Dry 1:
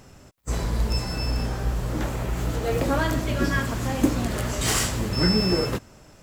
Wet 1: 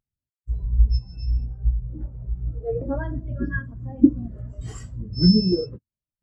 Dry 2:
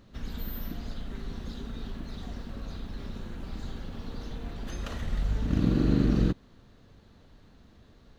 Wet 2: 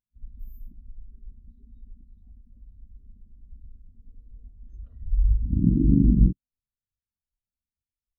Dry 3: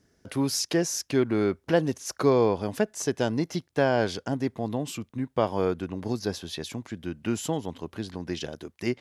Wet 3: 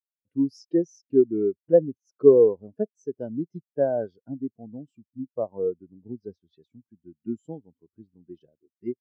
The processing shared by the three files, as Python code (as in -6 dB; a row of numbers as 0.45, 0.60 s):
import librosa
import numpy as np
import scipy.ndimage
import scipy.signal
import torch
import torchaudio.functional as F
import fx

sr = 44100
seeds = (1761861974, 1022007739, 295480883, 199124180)

y = fx.spectral_expand(x, sr, expansion=2.5)
y = F.gain(torch.from_numpy(y), 6.0).numpy()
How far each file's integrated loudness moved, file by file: +1.0, +10.5, +3.5 LU